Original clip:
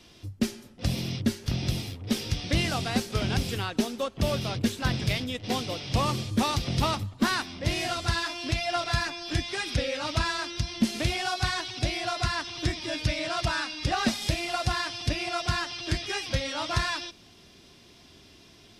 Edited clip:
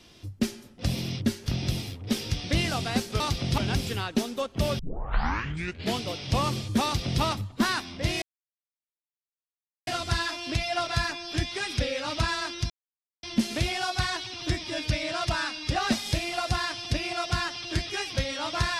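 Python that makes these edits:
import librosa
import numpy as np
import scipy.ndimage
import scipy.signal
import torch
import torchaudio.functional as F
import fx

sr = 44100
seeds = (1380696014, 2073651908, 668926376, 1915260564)

y = fx.edit(x, sr, fx.tape_start(start_s=4.41, length_s=1.23),
    fx.duplicate(start_s=6.46, length_s=0.38, to_s=3.2),
    fx.insert_silence(at_s=7.84, length_s=1.65),
    fx.insert_silence(at_s=10.67, length_s=0.53),
    fx.cut(start_s=11.78, length_s=0.72), tone=tone)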